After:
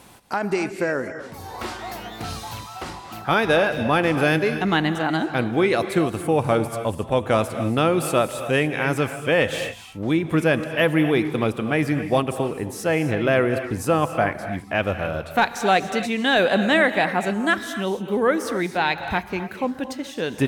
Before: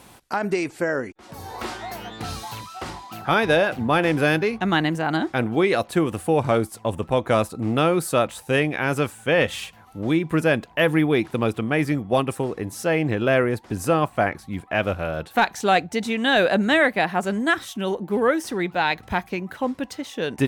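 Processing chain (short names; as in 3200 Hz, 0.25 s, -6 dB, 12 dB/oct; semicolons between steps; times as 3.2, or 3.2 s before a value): non-linear reverb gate 0.3 s rising, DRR 9 dB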